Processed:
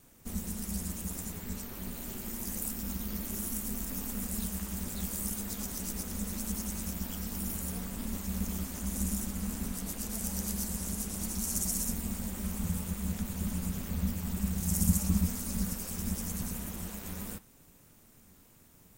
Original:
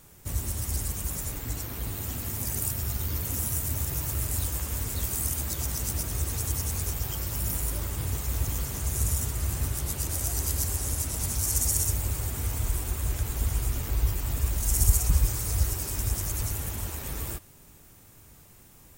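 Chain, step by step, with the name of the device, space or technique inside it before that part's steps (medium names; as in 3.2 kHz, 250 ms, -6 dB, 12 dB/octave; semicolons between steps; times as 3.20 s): alien voice (ring modulator 130 Hz; flange 0.51 Hz, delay 6.8 ms, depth 5.2 ms, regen -61%); trim +1 dB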